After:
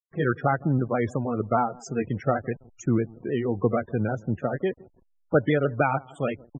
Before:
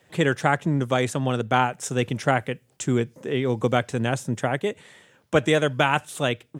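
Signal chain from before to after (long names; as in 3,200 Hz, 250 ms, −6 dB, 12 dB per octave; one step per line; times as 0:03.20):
pitch shifter swept by a sawtooth −2 semitones, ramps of 157 ms
high-shelf EQ 4,200 Hz −7 dB
on a send: repeating echo 163 ms, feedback 36%, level −22 dB
on the sum: slack as between gear wheels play −38.5 dBFS
spectral peaks only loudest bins 32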